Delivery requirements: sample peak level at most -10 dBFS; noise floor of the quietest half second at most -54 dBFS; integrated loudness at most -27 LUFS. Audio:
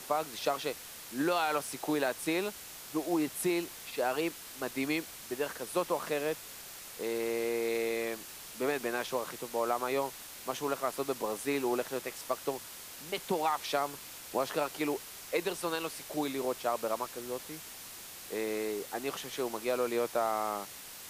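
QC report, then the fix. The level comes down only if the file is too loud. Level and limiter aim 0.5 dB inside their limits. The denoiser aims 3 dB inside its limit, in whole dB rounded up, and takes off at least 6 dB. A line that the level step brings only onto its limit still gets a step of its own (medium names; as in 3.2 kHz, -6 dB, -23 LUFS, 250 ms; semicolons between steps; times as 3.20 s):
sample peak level -15.0 dBFS: pass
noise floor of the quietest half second -47 dBFS: fail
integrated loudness -34.5 LUFS: pass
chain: noise reduction 10 dB, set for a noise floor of -47 dBFS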